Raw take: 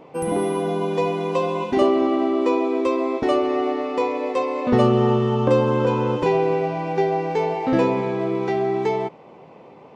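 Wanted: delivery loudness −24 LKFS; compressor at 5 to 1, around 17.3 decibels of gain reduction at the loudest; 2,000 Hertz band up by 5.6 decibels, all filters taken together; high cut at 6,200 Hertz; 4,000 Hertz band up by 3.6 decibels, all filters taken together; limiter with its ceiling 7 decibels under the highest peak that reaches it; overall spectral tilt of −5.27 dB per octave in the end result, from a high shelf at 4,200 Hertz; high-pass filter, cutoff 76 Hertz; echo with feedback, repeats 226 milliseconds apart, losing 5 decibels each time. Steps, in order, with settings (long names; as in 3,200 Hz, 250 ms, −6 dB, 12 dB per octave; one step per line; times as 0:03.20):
high-pass filter 76 Hz
low-pass filter 6,200 Hz
parametric band 2,000 Hz +7 dB
parametric band 4,000 Hz +6 dB
high-shelf EQ 4,200 Hz −7.5 dB
downward compressor 5 to 1, threshold −33 dBFS
brickwall limiter −28 dBFS
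repeating echo 226 ms, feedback 56%, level −5 dB
level +12 dB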